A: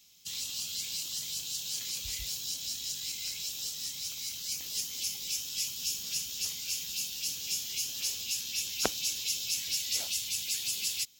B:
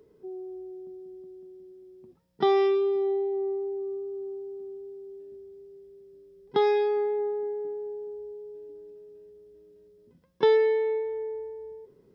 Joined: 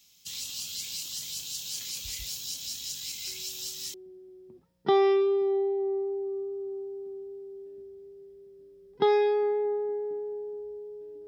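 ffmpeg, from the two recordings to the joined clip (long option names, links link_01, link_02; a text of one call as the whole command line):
ffmpeg -i cue0.wav -i cue1.wav -filter_complex "[1:a]asplit=2[link_01][link_02];[0:a]apad=whole_dur=11.27,atrim=end=11.27,atrim=end=3.942[link_03];[link_02]atrim=start=1.478:end=8.81[link_04];[link_01]atrim=start=0.81:end=1.48,asetpts=PTS-STARTPTS,volume=-14dB,afade=type=in:duration=0.004:curve=hsin,afade=type=out:start_time=0.666:duration=0.004:curve=hsin,adelay=3270[link_05];[link_03][link_04]acrossfade=duration=0.004:curve1=hsin:curve2=hsin[link_06];[link_06][link_05]amix=inputs=2:normalize=0" out.wav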